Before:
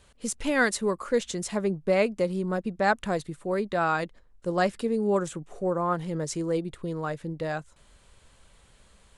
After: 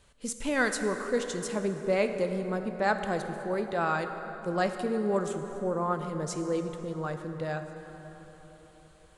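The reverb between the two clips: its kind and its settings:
dense smooth reverb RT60 4.4 s, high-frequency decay 0.5×, DRR 6.5 dB
level −3.5 dB

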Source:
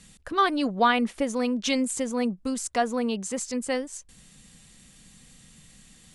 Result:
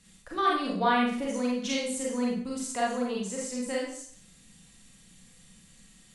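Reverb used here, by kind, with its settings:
four-comb reverb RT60 0.55 s, combs from 33 ms, DRR −4.5 dB
level −9 dB

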